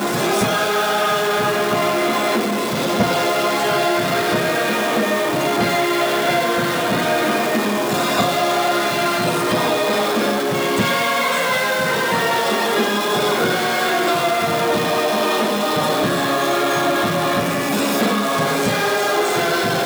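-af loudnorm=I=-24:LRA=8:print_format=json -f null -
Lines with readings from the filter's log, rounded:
"input_i" : "-17.9",
"input_tp" : "-4.9",
"input_lra" : "0.4",
"input_thresh" : "-27.9",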